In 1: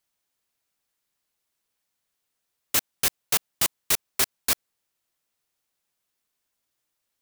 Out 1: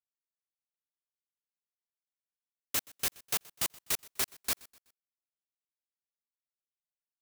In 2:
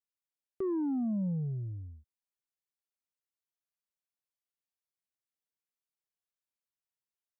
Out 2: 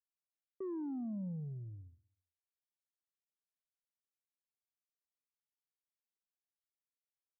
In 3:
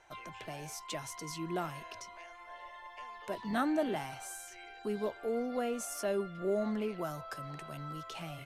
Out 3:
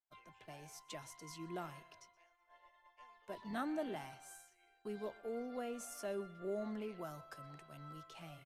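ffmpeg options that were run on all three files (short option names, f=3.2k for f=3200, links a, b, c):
-af "agate=range=-33dB:threshold=-41dB:ratio=3:detection=peak,aecho=1:1:125|250|375:0.0708|0.029|0.0119,volume=-8.5dB"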